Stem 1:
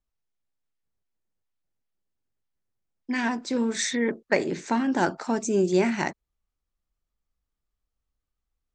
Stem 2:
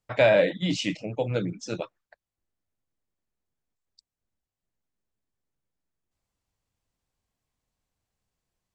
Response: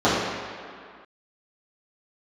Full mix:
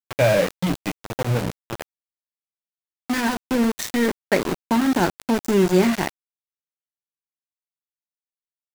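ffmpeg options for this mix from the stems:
-filter_complex "[0:a]lowshelf=f=240:g=10,volume=1.19[s0];[1:a]lowpass=2400,equalizer=f=110:w=0.95:g=9.5,volume=1.12[s1];[s0][s1]amix=inputs=2:normalize=0,aeval=exprs='val(0)*gte(abs(val(0)),0.0891)':c=same"

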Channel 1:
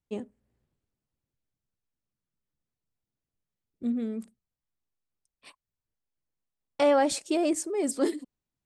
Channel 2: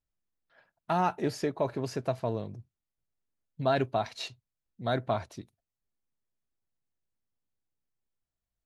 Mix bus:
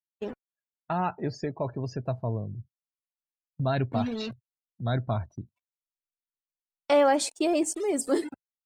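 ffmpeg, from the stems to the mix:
-filter_complex "[0:a]highpass=260,adynamicequalizer=threshold=0.0141:dfrequency=530:dqfactor=4.2:tfrequency=530:tqfactor=4.2:attack=5:release=100:ratio=0.375:range=2:mode=cutabove:tftype=bell,acrusher=bits=6:mix=0:aa=0.000001,adelay=100,volume=1.26[s0];[1:a]asubboost=boost=4:cutoff=190,volume=0.891[s1];[s0][s1]amix=inputs=2:normalize=0,afftdn=nr=30:nf=-44,agate=range=0.224:threshold=0.00631:ratio=16:detection=peak"

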